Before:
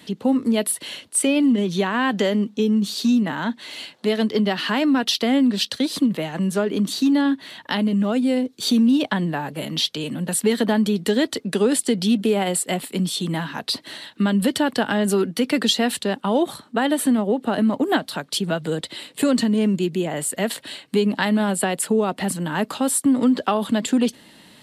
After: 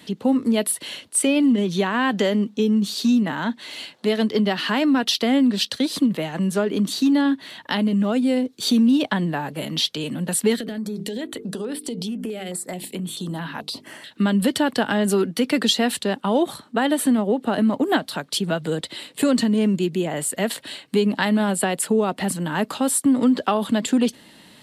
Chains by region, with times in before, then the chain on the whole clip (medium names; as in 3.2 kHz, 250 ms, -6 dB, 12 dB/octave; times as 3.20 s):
10.56–14.11 s: hum notches 50/100/150/200/250/300/350/400/450 Hz + compression 12:1, threshold -24 dBFS + step-sequenced notch 4.6 Hz 970–6800 Hz
whole clip: none